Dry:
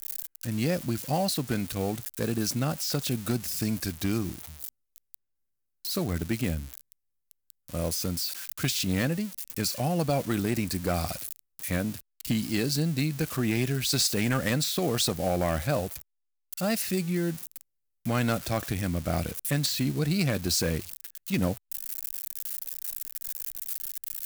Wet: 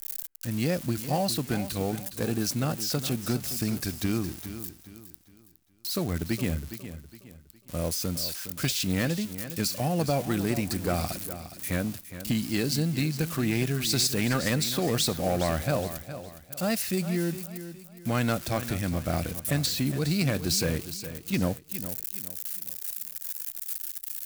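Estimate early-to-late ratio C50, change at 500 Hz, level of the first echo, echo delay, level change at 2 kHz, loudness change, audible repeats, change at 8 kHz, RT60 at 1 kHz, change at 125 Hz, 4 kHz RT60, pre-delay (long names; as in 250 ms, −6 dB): no reverb audible, +0.5 dB, −12.0 dB, 413 ms, +0.5 dB, 0.0 dB, 3, +0.5 dB, no reverb audible, +0.5 dB, no reverb audible, no reverb audible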